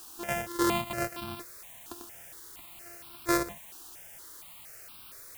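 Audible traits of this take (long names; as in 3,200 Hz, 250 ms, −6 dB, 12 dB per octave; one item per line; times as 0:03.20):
a buzz of ramps at a fixed pitch in blocks of 128 samples
sample-and-hold tremolo, depth 75%
a quantiser's noise floor 8 bits, dither triangular
notches that jump at a steady rate 4.3 Hz 570–1,900 Hz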